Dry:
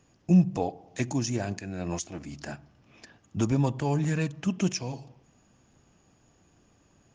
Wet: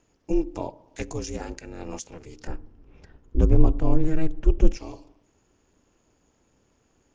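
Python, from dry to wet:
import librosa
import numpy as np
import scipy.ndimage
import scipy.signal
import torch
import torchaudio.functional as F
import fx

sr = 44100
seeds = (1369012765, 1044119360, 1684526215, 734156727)

y = x * np.sin(2.0 * np.pi * 160.0 * np.arange(len(x)) / sr)
y = fx.tilt_eq(y, sr, slope=-3.5, at=(2.47, 4.77))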